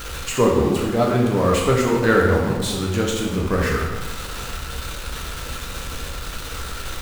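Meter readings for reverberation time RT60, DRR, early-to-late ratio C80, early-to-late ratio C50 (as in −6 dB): 1.3 s, −2.0 dB, 4.5 dB, 2.5 dB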